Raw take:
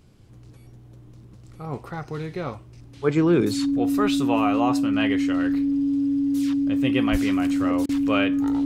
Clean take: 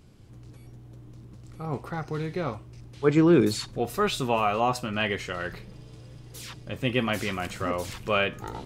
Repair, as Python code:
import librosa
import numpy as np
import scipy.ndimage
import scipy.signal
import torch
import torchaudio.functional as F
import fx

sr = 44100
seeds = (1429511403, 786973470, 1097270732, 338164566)

y = fx.notch(x, sr, hz=280.0, q=30.0)
y = fx.fix_deplosive(y, sr, at_s=(7.11,))
y = fx.fix_interpolate(y, sr, at_s=(7.86,), length_ms=29.0)